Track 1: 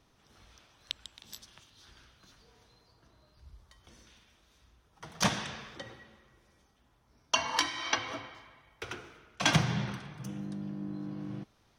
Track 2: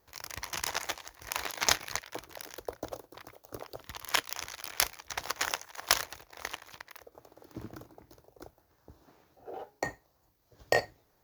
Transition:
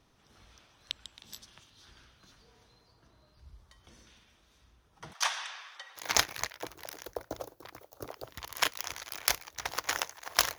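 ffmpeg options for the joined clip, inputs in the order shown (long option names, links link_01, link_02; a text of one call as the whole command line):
ffmpeg -i cue0.wav -i cue1.wav -filter_complex "[0:a]asettb=1/sr,asplit=3[link_01][link_02][link_03];[link_01]atrim=end=5.134[link_04];[link_02]atrim=start=5.13:end=6.03,asetpts=PTS-STARTPTS,afade=type=in:duration=0.004:curve=qsin,afade=type=out:start_time=0.896:duration=0.004:curve=qsin,highpass=frequency=830:width=0.5412,highpass=frequency=830:width=1.3066[link_05];[link_03]atrim=start=6.026[link_06];[link_04][link_05]acrossfade=duration=0.004:curve1=hsin:curve2=qsin[link_07];[link_07][link_06]acrossfade=duration=0.004:curve1=qsin:curve2=hsin,apad=whole_dur=10.58,atrim=end=10.58,atrim=end=6.03,asetpts=PTS-STARTPTS[link_08];[1:a]atrim=start=1.47:end=6.1,asetpts=PTS-STARTPTS[link_09];[link_08][link_09]acrossfade=duration=0.08:curve1=tri:curve2=tri" out.wav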